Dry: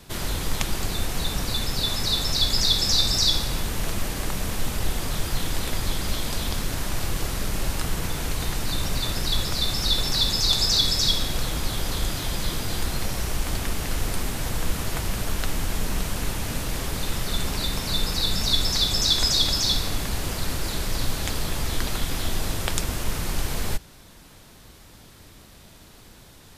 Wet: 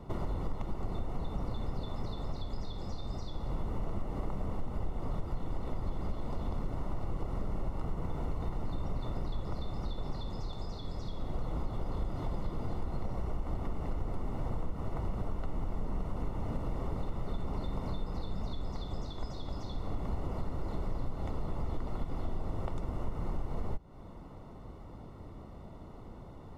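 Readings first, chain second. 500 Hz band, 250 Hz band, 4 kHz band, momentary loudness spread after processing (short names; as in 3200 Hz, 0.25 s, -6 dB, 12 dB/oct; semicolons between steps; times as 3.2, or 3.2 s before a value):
-7.5 dB, -7.5 dB, -31.0 dB, 4 LU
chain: compressor, threshold -32 dBFS, peak gain reduction 15.5 dB; polynomial smoothing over 65 samples; gain +2.5 dB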